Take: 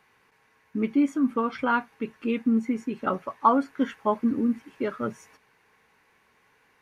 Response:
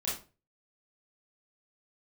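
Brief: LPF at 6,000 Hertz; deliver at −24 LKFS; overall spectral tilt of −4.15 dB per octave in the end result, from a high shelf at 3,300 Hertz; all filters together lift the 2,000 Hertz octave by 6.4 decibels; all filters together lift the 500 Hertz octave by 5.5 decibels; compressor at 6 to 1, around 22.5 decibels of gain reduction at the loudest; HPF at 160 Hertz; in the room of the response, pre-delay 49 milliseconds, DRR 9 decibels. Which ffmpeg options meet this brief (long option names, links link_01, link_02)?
-filter_complex "[0:a]highpass=160,lowpass=6000,equalizer=frequency=500:width_type=o:gain=6,equalizer=frequency=2000:width_type=o:gain=7.5,highshelf=frequency=3300:gain=5.5,acompressor=threshold=-36dB:ratio=6,asplit=2[link_01][link_02];[1:a]atrim=start_sample=2205,adelay=49[link_03];[link_02][link_03]afir=irnorm=-1:irlink=0,volume=-13.5dB[link_04];[link_01][link_04]amix=inputs=2:normalize=0,volume=15.5dB"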